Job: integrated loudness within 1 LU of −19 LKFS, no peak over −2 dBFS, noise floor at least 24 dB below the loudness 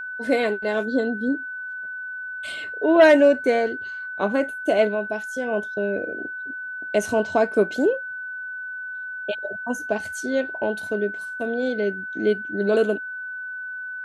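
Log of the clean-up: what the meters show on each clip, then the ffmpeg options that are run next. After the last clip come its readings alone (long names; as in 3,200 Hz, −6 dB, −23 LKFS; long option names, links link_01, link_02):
interfering tone 1,500 Hz; level of the tone −30 dBFS; integrated loudness −23.5 LKFS; sample peak −5.0 dBFS; target loudness −19.0 LKFS
→ -af "bandreject=frequency=1500:width=30"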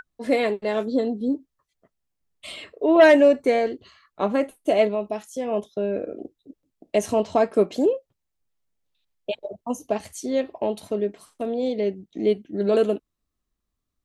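interfering tone none found; integrated loudness −23.0 LKFS; sample peak −5.0 dBFS; target loudness −19.0 LKFS
→ -af "volume=4dB,alimiter=limit=-2dB:level=0:latency=1"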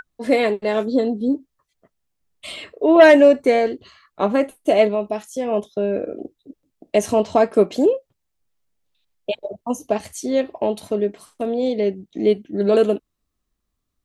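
integrated loudness −19.0 LKFS; sample peak −2.0 dBFS; background noise floor −77 dBFS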